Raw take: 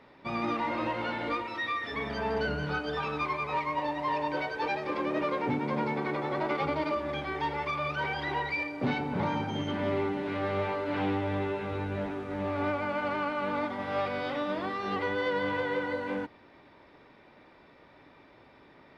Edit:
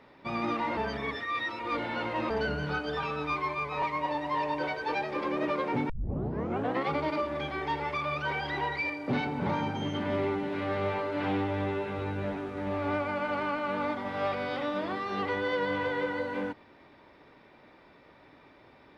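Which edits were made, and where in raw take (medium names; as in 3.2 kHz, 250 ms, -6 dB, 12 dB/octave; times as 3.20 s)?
0.77–2.30 s: reverse
3.03–3.56 s: stretch 1.5×
5.63 s: tape start 0.99 s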